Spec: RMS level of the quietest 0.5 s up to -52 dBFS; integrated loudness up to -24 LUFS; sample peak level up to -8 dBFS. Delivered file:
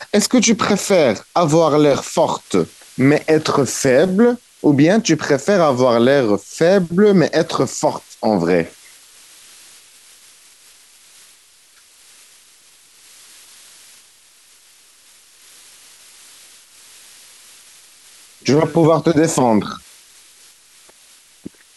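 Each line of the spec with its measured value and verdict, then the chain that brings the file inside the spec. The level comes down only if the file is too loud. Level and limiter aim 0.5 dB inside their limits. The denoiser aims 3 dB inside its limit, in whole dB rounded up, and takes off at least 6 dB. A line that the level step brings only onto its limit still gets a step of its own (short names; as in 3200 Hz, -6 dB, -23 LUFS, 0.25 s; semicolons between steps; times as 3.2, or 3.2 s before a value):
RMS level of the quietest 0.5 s -50 dBFS: fail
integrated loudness -15.5 LUFS: fail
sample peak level -4.0 dBFS: fail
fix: gain -9 dB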